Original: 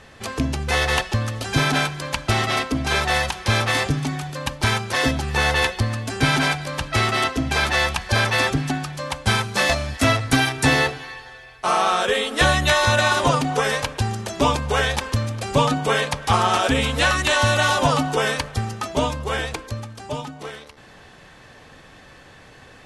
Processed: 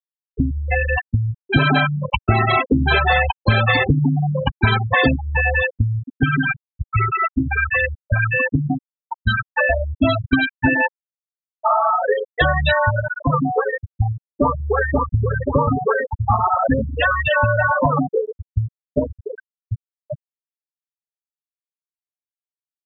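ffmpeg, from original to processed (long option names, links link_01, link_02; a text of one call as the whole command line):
ffmpeg -i in.wav -filter_complex "[0:a]asettb=1/sr,asplit=3[link_01][link_02][link_03];[link_01]atrim=end=1.494[link_04];[link_02]atrim=start=1.49:end=5.16,asetpts=PTS-STARTPTS,afade=type=in:duration=0.004:curve=qsin,afade=type=out:start_time=3.666:duration=0.004:curve=qsin,acontrast=61[link_05];[link_03]atrim=start=5.156[link_06];[link_04][link_05]acrossfade=duration=0.004:curve1=hsin:curve2=qsin[link_07];[link_07][link_06]acrossfade=duration=0.004:curve1=qsin:curve2=hsin,asettb=1/sr,asplit=3[link_08][link_09][link_10];[link_08]atrim=end=9.054[link_11];[link_09]atrim=start=9.05:end=11.99,asetpts=PTS-STARTPTS,afade=type=in:duration=0.004:curve=qsin,afade=type=out:start_time=2.936:duration=0.004:curve=qsin,aecho=1:1:3.3:0.5,atrim=end_sample=129654[link_12];[link_10]atrim=start=11.986[link_13];[link_11][link_12]acrossfade=duration=0.004:curve1=hsin:curve2=qsin[link_14];[link_14][link_13]acrossfade=duration=0.004:curve1=qsin:curve2=hsin,asettb=1/sr,asplit=3[link_15][link_16][link_17];[link_15]atrim=end=12.904[link_18];[link_16]atrim=start=12.9:end=13.32,asetpts=PTS-STARTPTS,afade=type=in:duration=0.004:curve=qsin,afade=type=out:start_time=0.416:duration=0.004:curve=qsin,acrossover=split=290|3000[link_19][link_20][link_21];[link_20]acompressor=threshold=-32dB:ratio=1.5:attack=3.2:release=140:knee=2.83:detection=peak[link_22];[link_19][link_22][link_21]amix=inputs=3:normalize=0[link_23];[link_17]atrim=start=13.316[link_24];[link_18][link_23]acrossfade=duration=0.004:curve1=hsin:curve2=qsin[link_25];[link_25][link_24]acrossfade=duration=0.004:curve1=qsin:curve2=hsin,asplit=2[link_26][link_27];[link_27]afade=type=in:start_time=14.31:duration=0.01,afade=type=out:start_time=15.23:duration=0.01,aecho=0:1:530|1060|1590|2120|2650|3180|3710|4240|4770|5300:0.668344|0.434424|0.282375|0.183544|0.119304|0.0775473|0.0504058|0.0327637|0.0212964|0.0138427[link_28];[link_26][link_28]amix=inputs=2:normalize=0,asettb=1/sr,asplit=3[link_29][link_30][link_31];[link_29]atrim=end=18.064[link_32];[link_30]atrim=start=18.06:end=19.37,asetpts=PTS-STARTPTS,afade=type=in:duration=0.004:curve=qsin,afade=type=out:start_time=1.306:duration=0.004:curve=qsin,equalizer=frequency=1300:width=1.4:gain=-7[link_33];[link_31]atrim=start=19.366[link_34];[link_32][link_33]acrossfade=duration=0.004:curve1=hsin:curve2=qsin[link_35];[link_35][link_34]acrossfade=duration=0.004:curve1=qsin:curve2=hsin,afftfilt=real='re*gte(hypot(re,im),0.398)':imag='im*gte(hypot(re,im),0.398)':win_size=1024:overlap=0.75,acompressor=threshold=-21dB:ratio=3,volume=7dB" out.wav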